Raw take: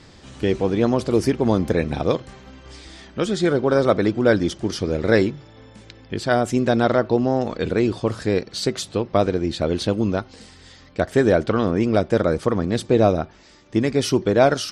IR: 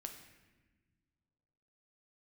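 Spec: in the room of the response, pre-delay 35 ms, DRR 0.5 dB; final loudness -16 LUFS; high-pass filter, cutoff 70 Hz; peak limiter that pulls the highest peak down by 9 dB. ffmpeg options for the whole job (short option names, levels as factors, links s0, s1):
-filter_complex "[0:a]highpass=70,alimiter=limit=0.282:level=0:latency=1,asplit=2[s0][s1];[1:a]atrim=start_sample=2205,adelay=35[s2];[s1][s2]afir=irnorm=-1:irlink=0,volume=1.41[s3];[s0][s3]amix=inputs=2:normalize=0,volume=1.78"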